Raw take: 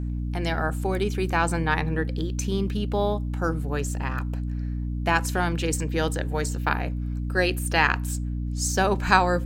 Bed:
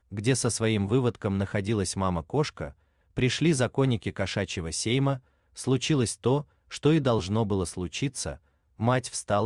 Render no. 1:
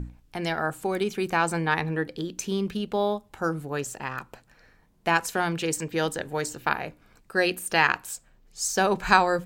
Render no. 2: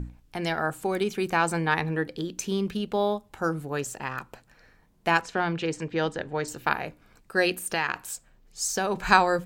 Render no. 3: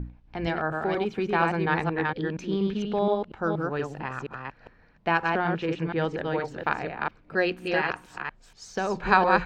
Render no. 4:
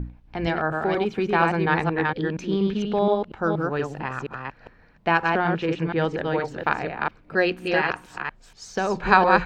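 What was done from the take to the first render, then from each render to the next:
mains-hum notches 60/120/180/240/300 Hz
0:05.21–0:06.48: high-frequency loss of the air 130 metres; 0:07.57–0:09.04: downward compressor 3 to 1, threshold −23 dBFS
delay that plays each chunk backwards 237 ms, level −3 dB; high-frequency loss of the air 240 metres
level +3.5 dB

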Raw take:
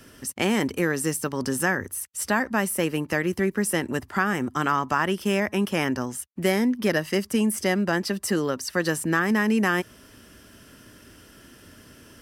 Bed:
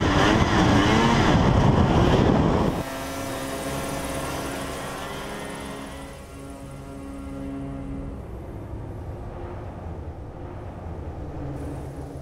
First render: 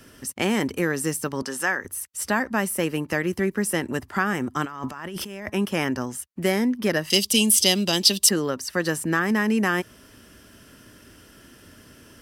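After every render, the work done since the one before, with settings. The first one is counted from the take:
0:01.42–0:01.85: meter weighting curve A
0:04.65–0:05.50: compressor whose output falls as the input rises −34 dBFS
0:07.10–0:08.29: high shelf with overshoot 2,400 Hz +12.5 dB, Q 3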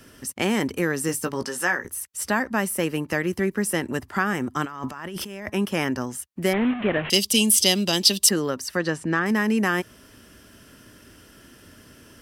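0:01.07–0:01.91: double-tracking delay 17 ms −7.5 dB
0:06.53–0:07.10: linear delta modulator 16 kbit/s, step −24.5 dBFS
0:08.77–0:09.26: high-frequency loss of the air 87 metres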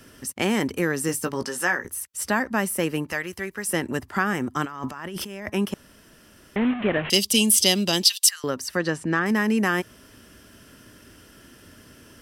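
0:03.12–0:03.69: parametric band 230 Hz −12.5 dB 2.4 octaves
0:05.74–0:06.56: fill with room tone
0:08.04–0:08.44: Bessel high-pass filter 1,900 Hz, order 6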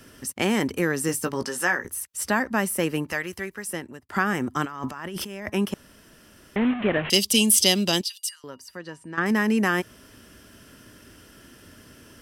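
0:03.34–0:04.09: fade out
0:08.01–0:09.18: tuned comb filter 940 Hz, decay 0.17 s, harmonics odd, mix 80%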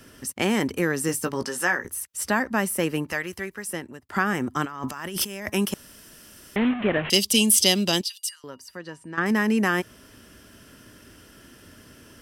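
0:04.88–0:06.69: high-shelf EQ 4,000 Hz +11 dB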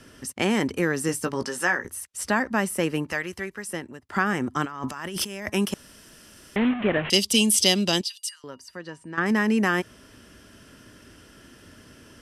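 Bessel low-pass filter 9,600 Hz, order 8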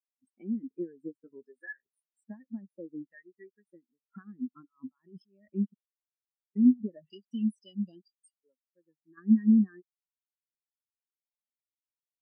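downward compressor 4 to 1, threshold −29 dBFS, peak gain reduction 12.5 dB
every bin expanded away from the loudest bin 4 to 1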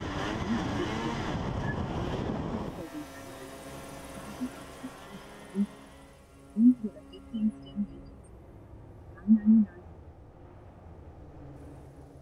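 mix in bed −14.5 dB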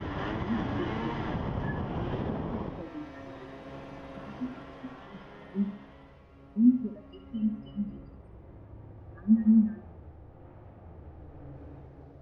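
high-frequency loss of the air 260 metres
on a send: flutter between parallel walls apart 11.4 metres, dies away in 0.41 s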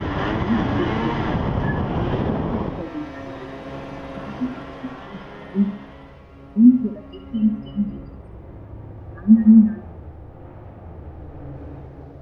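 level +10.5 dB
brickwall limiter −3 dBFS, peak gain reduction 2 dB

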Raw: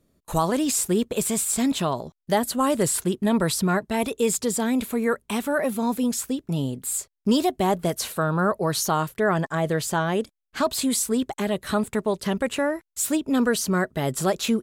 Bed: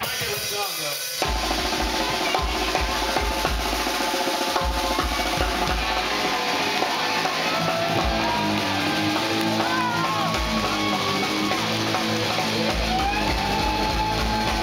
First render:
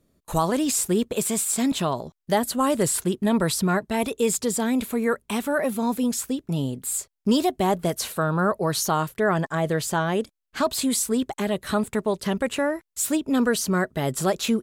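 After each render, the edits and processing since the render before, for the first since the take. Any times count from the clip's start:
0:01.16–0:01.72: high-pass filter 140 Hz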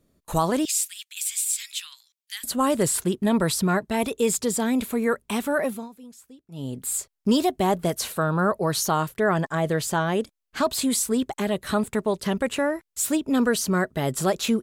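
0:00.65–0:02.44: inverse Chebyshev high-pass filter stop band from 640 Hz, stop band 60 dB
0:05.62–0:06.78: duck −21 dB, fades 0.27 s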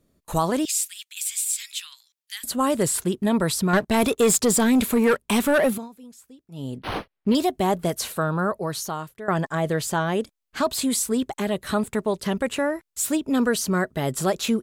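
0:03.73–0:05.78: leveller curve on the samples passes 2
0:06.78–0:07.35: linearly interpolated sample-rate reduction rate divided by 6×
0:08.18–0:09.28: fade out, to −15 dB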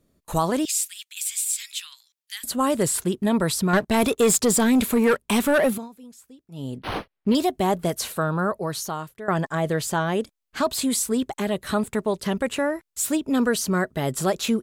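no processing that can be heard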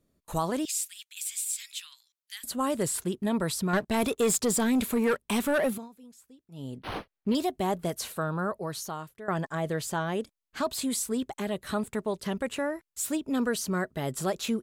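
level −6.5 dB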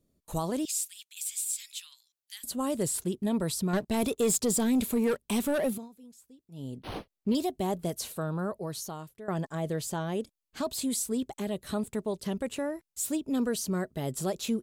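parametric band 1,500 Hz −8 dB 1.8 octaves

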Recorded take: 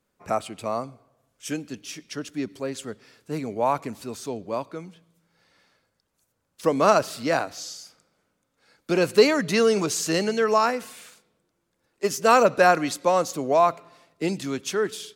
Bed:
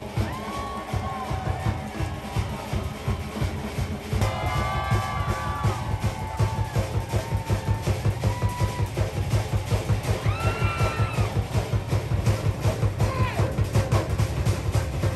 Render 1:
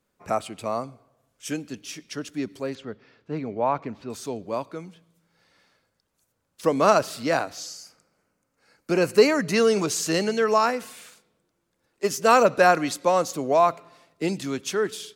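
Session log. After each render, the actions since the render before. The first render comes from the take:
0:02.75–0:04.10: high-frequency loss of the air 230 metres
0:07.66–0:09.56: parametric band 3,500 Hz −11.5 dB 0.27 octaves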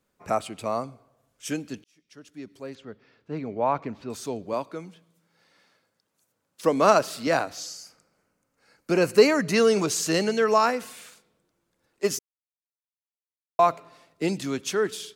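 0:01.84–0:03.78: fade in
0:04.53–0:07.27: high-pass filter 140 Hz
0:12.19–0:13.59: silence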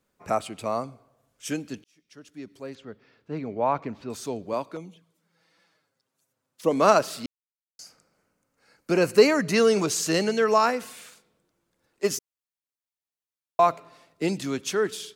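0:04.76–0:06.71: flanger swept by the level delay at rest 8.4 ms, full sweep at −39.5 dBFS
0:07.26–0:07.79: silence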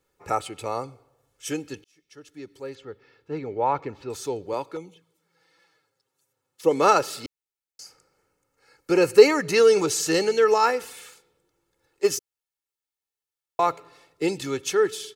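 comb filter 2.3 ms, depth 65%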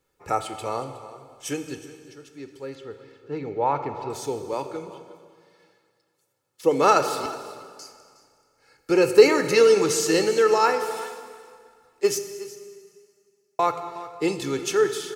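single-tap delay 365 ms −17.5 dB
dense smooth reverb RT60 2.1 s, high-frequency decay 0.9×, DRR 8 dB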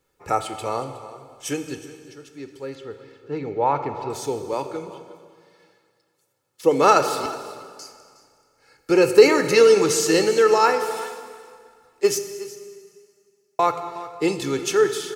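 level +2.5 dB
brickwall limiter −1 dBFS, peak gain reduction 2 dB

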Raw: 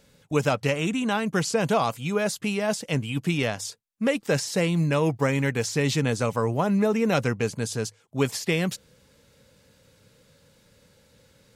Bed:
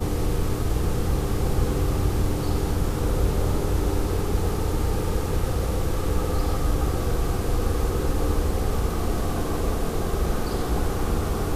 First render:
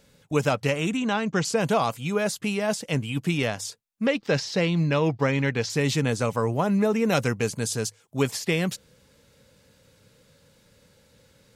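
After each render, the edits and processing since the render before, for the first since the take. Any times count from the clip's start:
0:00.97–0:01.45: Butterworth low-pass 7,600 Hz 48 dB per octave
0:04.06–0:05.70: high shelf with overshoot 6,700 Hz −13 dB, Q 1.5
0:07.10–0:08.22: high-shelf EQ 5,400 Hz +7 dB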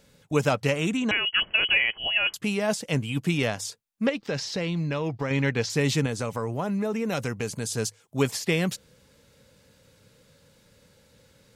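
0:01.11–0:02.34: voice inversion scrambler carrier 3,100 Hz
0:04.09–0:05.31: downward compressor 3 to 1, threshold −26 dBFS
0:06.06–0:07.77: downward compressor 2 to 1, threshold −28 dBFS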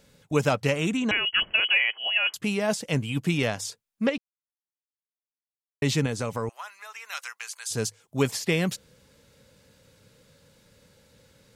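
0:01.60–0:02.35: high-pass filter 550 Hz
0:04.18–0:05.82: silence
0:06.49–0:07.71: high-pass filter 1,100 Hz 24 dB per octave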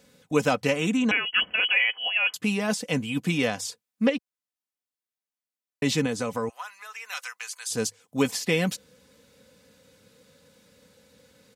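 high-pass filter 88 Hz
comb filter 4 ms, depth 49%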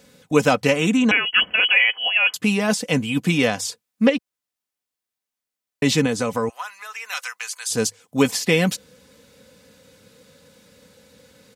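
level +6 dB

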